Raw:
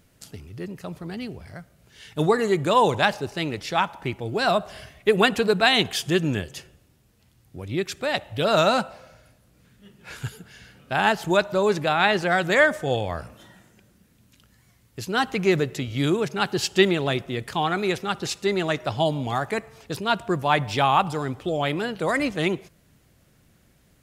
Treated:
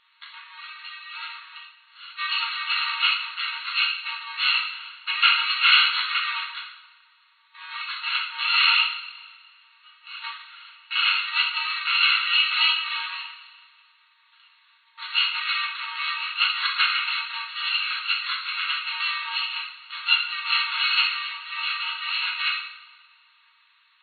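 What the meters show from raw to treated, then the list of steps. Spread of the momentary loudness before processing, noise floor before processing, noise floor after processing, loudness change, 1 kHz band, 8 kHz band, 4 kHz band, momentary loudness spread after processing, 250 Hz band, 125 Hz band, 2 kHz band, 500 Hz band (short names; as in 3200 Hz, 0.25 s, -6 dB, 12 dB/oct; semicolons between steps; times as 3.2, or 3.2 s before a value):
16 LU, -60 dBFS, -61 dBFS, +1.0 dB, -5.5 dB, under -40 dB, +8.0 dB, 18 LU, under -40 dB, under -40 dB, +3.0 dB, under -40 dB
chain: FFT order left unsorted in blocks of 128 samples; two-slope reverb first 0.64 s, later 2 s, DRR -5 dB; FFT band-pass 910–4400 Hz; gain +4.5 dB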